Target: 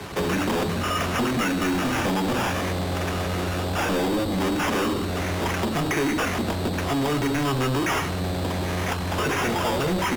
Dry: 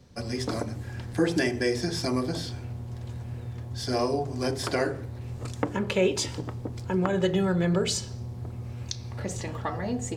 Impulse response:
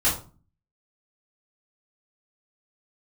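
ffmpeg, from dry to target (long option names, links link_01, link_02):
-filter_complex "[0:a]acrossover=split=150|380[link_01][link_02][link_03];[link_01]acompressor=threshold=-48dB:ratio=4[link_04];[link_02]acompressor=threshold=-36dB:ratio=4[link_05];[link_03]acompressor=threshold=-41dB:ratio=4[link_06];[link_04][link_05][link_06]amix=inputs=3:normalize=0,acrusher=samples=8:mix=1:aa=0.000001,asetrate=33038,aresample=44100,atempo=1.33484,asplit=2[link_07][link_08];[link_08]highpass=frequency=720:poles=1,volume=34dB,asoftclip=type=tanh:threshold=-20dB[link_09];[link_07][link_09]amix=inputs=2:normalize=0,lowpass=frequency=6600:poles=1,volume=-6dB,asplit=2[link_10][link_11];[1:a]atrim=start_sample=2205[link_12];[link_11][link_12]afir=irnorm=-1:irlink=0,volume=-31.5dB[link_13];[link_10][link_13]amix=inputs=2:normalize=0,volume=3.5dB"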